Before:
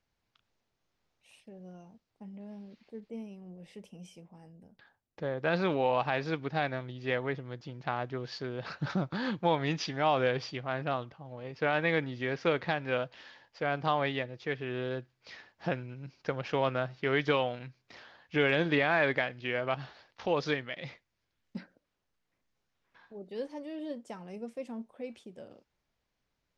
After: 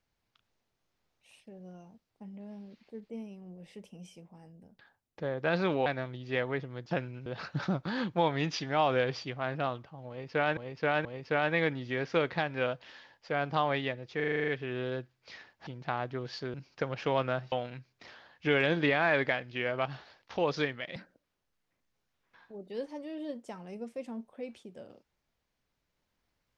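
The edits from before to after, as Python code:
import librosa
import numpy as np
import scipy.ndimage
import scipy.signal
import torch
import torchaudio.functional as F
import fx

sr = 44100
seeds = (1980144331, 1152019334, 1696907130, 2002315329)

y = fx.edit(x, sr, fx.cut(start_s=5.86, length_s=0.75),
    fx.swap(start_s=7.66, length_s=0.87, other_s=15.66, other_length_s=0.35),
    fx.repeat(start_s=11.36, length_s=0.48, count=3),
    fx.stutter(start_s=14.47, slice_s=0.04, count=9),
    fx.cut(start_s=16.99, length_s=0.42),
    fx.cut(start_s=20.85, length_s=0.72), tone=tone)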